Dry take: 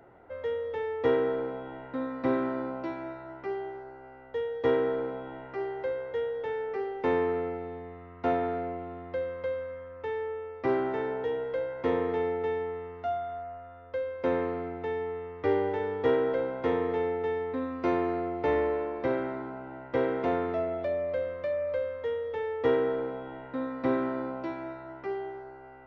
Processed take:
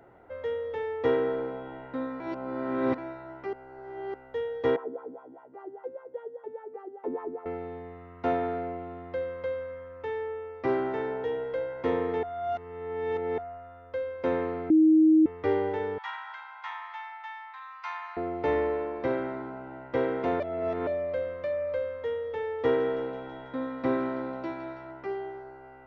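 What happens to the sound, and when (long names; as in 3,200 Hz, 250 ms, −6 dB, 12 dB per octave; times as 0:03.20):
0:02.20–0:02.98: reverse
0:03.53–0:04.14: reverse
0:04.76–0:07.46: LFO wah 5 Hz 240–1,200 Hz, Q 4.1
0:12.23–0:13.38: reverse
0:14.70–0:15.26: beep over 315 Hz −15.5 dBFS
0:15.98–0:18.17: Butterworth high-pass 830 Hz 72 dB per octave
0:20.40–0:20.87: reverse
0:22.42–0:24.91: delay with a high-pass on its return 164 ms, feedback 71%, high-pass 3,000 Hz, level −8 dB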